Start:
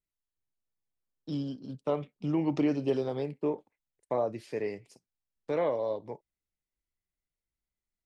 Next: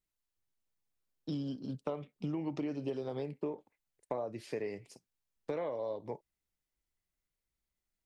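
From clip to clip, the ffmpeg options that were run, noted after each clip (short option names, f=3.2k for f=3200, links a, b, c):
-af "acompressor=threshold=-36dB:ratio=6,volume=2dB"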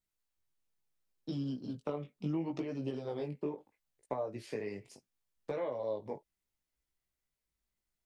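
-af "flanger=delay=15:depth=5.9:speed=0.72,volume=3dB"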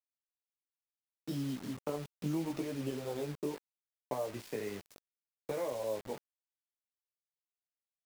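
-af "acrusher=bits=7:mix=0:aa=0.000001"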